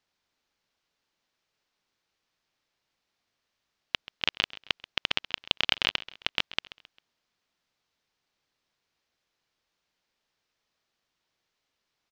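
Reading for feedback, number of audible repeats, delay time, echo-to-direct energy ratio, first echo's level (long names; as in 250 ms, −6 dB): 41%, 3, 133 ms, −16.5 dB, −17.5 dB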